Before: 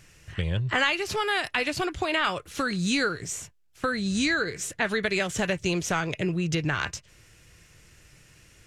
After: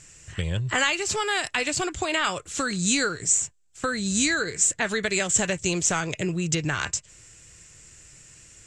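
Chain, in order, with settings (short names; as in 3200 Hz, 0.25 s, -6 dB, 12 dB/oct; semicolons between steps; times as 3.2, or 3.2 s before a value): synth low-pass 7600 Hz, resonance Q 7.7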